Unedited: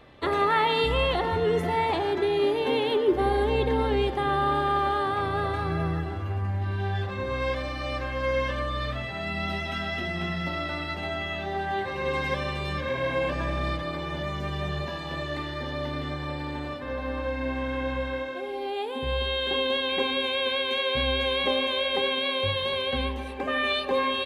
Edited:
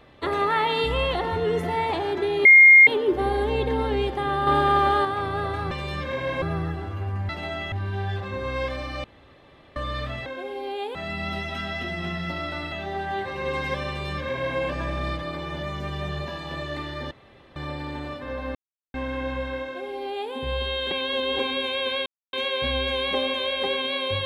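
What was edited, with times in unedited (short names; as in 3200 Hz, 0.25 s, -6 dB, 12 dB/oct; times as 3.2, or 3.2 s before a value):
2.45–2.87 bleep 2130 Hz -7.5 dBFS
4.47–5.05 gain +5 dB
7.9–8.62 room tone
10.89–11.32 move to 6.58
12.48–13.19 copy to 5.71
15.71–16.16 room tone
17.15–17.54 mute
18.24–18.93 copy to 9.12
19.51–19.99 reverse
20.66 insert silence 0.27 s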